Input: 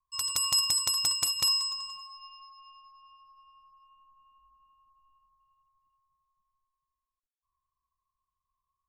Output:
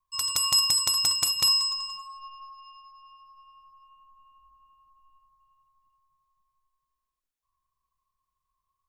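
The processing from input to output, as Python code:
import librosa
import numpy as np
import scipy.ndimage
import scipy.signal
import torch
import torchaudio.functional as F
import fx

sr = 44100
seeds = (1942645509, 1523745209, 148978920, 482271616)

y = fx.comb(x, sr, ms=4.4, depth=0.9, at=(1.98, 2.57), fade=0.02)
y = fx.room_shoebox(y, sr, seeds[0], volume_m3=520.0, walls='furnished', distance_m=0.52)
y = y * 10.0 ** (3.0 / 20.0)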